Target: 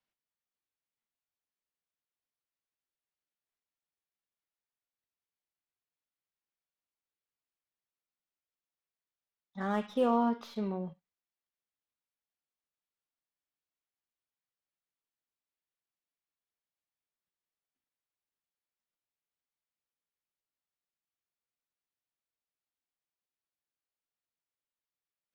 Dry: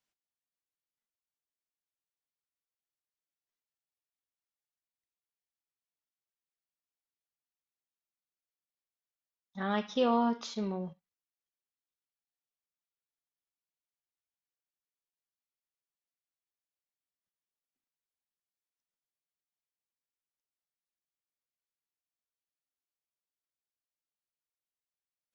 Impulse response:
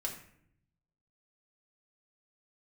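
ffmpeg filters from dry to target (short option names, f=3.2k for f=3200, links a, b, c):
-filter_complex "[0:a]lowpass=3.9k,acrossover=split=110|1700[a][b][c];[c]aeval=exprs='(tanh(282*val(0)+0.25)-tanh(0.25))/282':c=same[d];[a][b][d]amix=inputs=3:normalize=0"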